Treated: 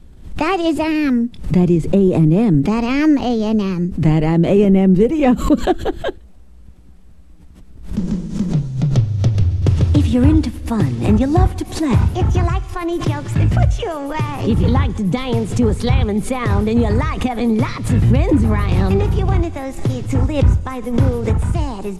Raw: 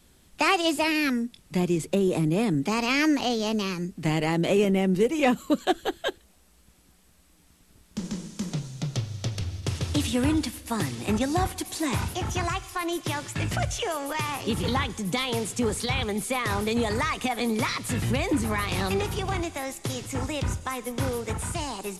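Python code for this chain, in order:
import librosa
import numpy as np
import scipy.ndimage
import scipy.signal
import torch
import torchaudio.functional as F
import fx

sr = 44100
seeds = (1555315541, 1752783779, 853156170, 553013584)

y = fx.tilt_eq(x, sr, slope=-3.5)
y = fx.pre_swell(y, sr, db_per_s=110.0)
y = y * 10.0 ** (4.0 / 20.0)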